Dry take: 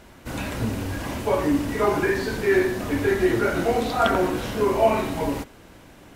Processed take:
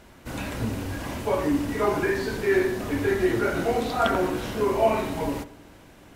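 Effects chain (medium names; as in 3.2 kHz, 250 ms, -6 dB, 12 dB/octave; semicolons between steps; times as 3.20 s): filtered feedback delay 79 ms, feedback 65%, level -18 dB; trim -2.5 dB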